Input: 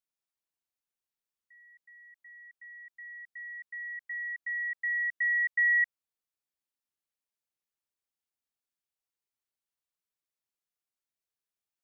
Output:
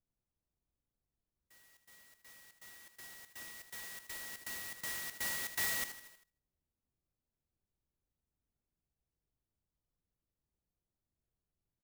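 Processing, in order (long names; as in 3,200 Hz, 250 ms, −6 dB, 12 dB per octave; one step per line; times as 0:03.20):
spectral tilt −6 dB per octave
repeating echo 79 ms, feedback 46%, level −10 dB
dynamic equaliser 1,700 Hz, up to −5 dB, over −46 dBFS, Q 2.5
on a send at −22 dB: convolution reverb RT60 1.0 s, pre-delay 3 ms
on the sum: converter with an unsteady clock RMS 0.096 ms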